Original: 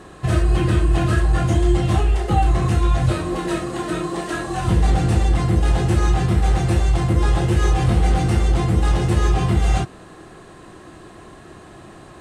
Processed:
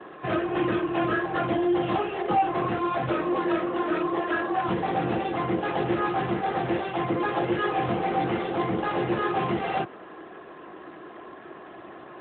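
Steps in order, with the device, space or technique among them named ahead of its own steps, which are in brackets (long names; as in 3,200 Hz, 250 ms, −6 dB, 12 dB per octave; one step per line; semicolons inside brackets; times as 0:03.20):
0:06.79–0:07.50: high-pass filter 89 Hz 12 dB per octave
telephone (band-pass filter 320–3,100 Hz; soft clipping −16 dBFS, distortion −23 dB; level +2 dB; AMR narrowband 12.2 kbit/s 8,000 Hz)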